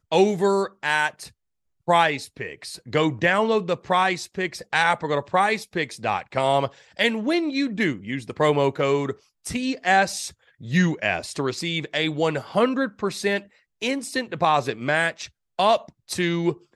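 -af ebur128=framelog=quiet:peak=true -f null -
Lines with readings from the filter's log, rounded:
Integrated loudness:
  I:         -23.2 LUFS
  Threshold: -33.6 LUFS
Loudness range:
  LRA:         1.8 LU
  Threshold: -43.7 LUFS
  LRA low:   -24.5 LUFS
  LRA high:  -22.6 LUFS
True peak:
  Peak:       -4.6 dBFS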